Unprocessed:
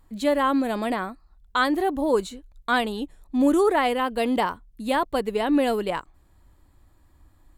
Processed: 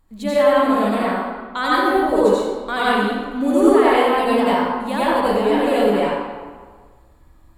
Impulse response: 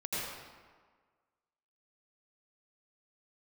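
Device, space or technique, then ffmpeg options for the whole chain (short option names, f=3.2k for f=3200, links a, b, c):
stairwell: -filter_complex "[1:a]atrim=start_sample=2205[a];[0:a][a]afir=irnorm=-1:irlink=0,volume=1.5dB"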